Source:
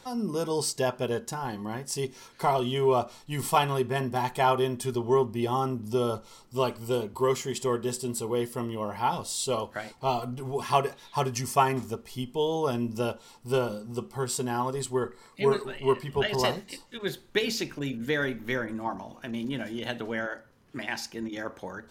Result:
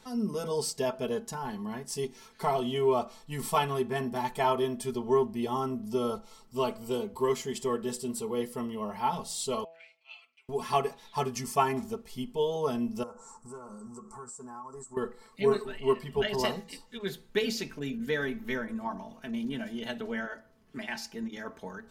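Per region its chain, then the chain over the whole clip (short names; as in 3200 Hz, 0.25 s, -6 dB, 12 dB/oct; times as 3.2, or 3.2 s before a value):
9.64–10.49 comb 6 ms, depth 34% + transient shaper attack -11 dB, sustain 0 dB + ladder band-pass 2600 Hz, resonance 80%
13.03–14.97 EQ curve 640 Hz 0 dB, 1200 Hz +12 dB, 3200 Hz -25 dB, 7500 Hz +14 dB, 14000 Hz -18 dB + compressor, threshold -39 dBFS
whole clip: low shelf 190 Hz +4 dB; comb 4.6 ms, depth 67%; de-hum 164.5 Hz, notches 7; gain -5.5 dB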